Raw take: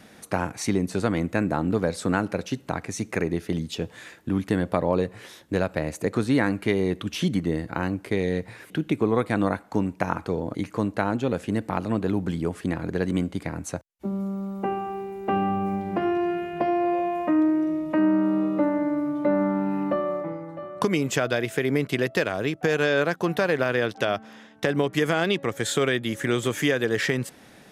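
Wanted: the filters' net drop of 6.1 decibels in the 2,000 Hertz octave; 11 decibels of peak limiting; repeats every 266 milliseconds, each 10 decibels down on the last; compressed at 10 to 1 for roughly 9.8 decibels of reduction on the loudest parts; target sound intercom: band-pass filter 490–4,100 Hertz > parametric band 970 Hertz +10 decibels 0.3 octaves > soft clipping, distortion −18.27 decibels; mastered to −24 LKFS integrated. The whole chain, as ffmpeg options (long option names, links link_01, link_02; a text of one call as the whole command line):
ffmpeg -i in.wav -af "equalizer=frequency=2000:width_type=o:gain=-8.5,acompressor=threshold=-28dB:ratio=10,alimiter=level_in=1dB:limit=-24dB:level=0:latency=1,volume=-1dB,highpass=490,lowpass=4100,equalizer=frequency=970:width_type=o:width=0.3:gain=10,aecho=1:1:266|532|798|1064:0.316|0.101|0.0324|0.0104,asoftclip=threshold=-29.5dB,volume=17dB" out.wav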